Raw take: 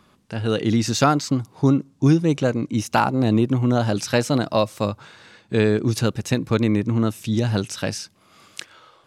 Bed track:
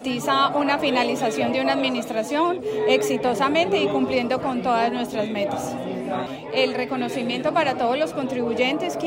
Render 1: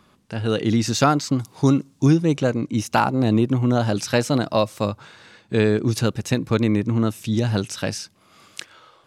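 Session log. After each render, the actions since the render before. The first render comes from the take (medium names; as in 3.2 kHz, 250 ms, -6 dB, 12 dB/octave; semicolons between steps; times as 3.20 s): 1.39–2.06 s: treble shelf 2.2 kHz +9.5 dB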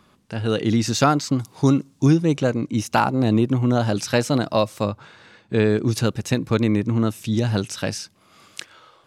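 4.83–5.70 s: treble shelf 4.9 kHz -7.5 dB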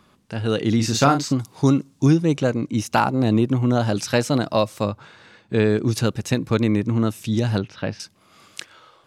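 0.76–1.34 s: doubling 36 ms -7 dB; 7.58–8.00 s: distance through air 300 m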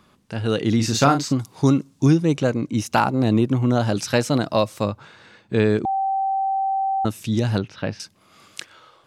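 5.85–7.05 s: bleep 776 Hz -19 dBFS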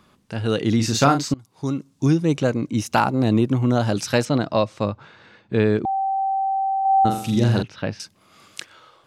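1.34–2.33 s: fade in, from -23.5 dB; 4.25–6.19 s: distance through air 100 m; 6.81–7.63 s: flutter echo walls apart 7.3 m, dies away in 0.57 s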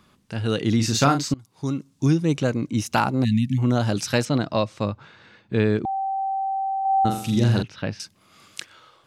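3.25–3.58 s: spectral selection erased 260–1700 Hz; peaking EQ 620 Hz -3.5 dB 2.3 oct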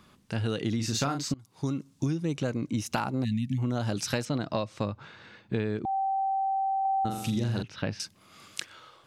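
compression 6:1, threshold -26 dBFS, peak gain reduction 12.5 dB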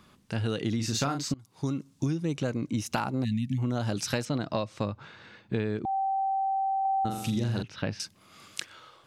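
no audible change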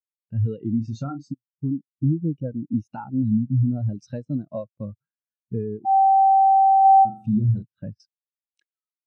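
waveshaping leveller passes 2; spectral contrast expander 2.5:1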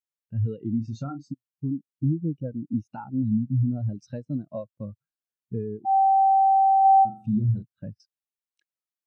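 trim -3 dB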